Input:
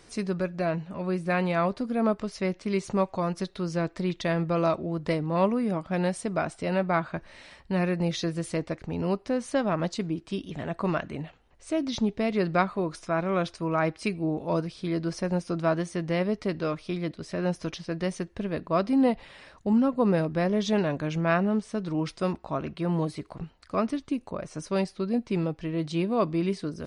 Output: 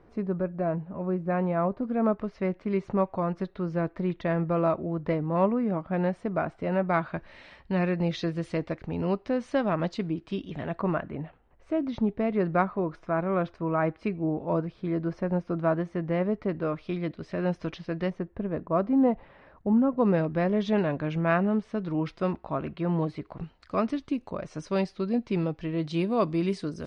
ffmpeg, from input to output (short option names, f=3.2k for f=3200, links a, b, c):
-af "asetnsamples=n=441:p=0,asendcmd='1.83 lowpass f 1800;6.89 lowpass f 3500;10.81 lowpass f 1700;16.75 lowpass f 2900;18.1 lowpass f 1300;19.98 lowpass f 2800;23.39 lowpass f 4800;25.94 lowpass f 8900',lowpass=1.1k"